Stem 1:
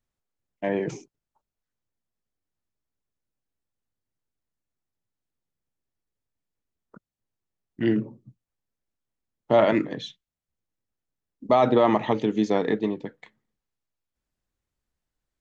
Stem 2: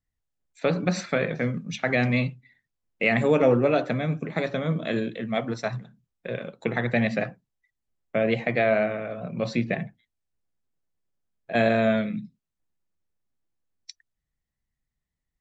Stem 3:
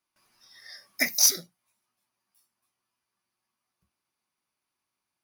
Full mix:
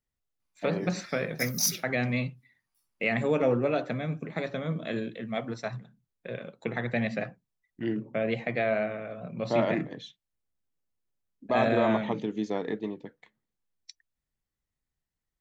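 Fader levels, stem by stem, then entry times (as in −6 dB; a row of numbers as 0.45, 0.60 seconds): −8.0, −5.5, −7.0 decibels; 0.00, 0.00, 0.40 seconds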